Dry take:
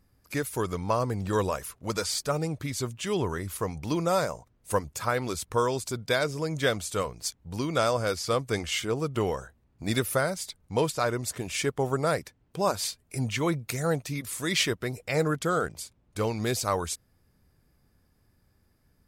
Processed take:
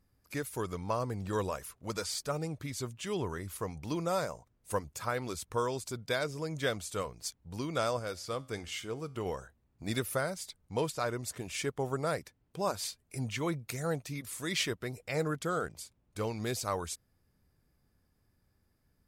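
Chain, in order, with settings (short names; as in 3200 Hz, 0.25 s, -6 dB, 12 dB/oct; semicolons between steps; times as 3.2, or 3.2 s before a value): 7.99–9.26 resonator 89 Hz, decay 0.51 s, harmonics all, mix 40%; gain -6.5 dB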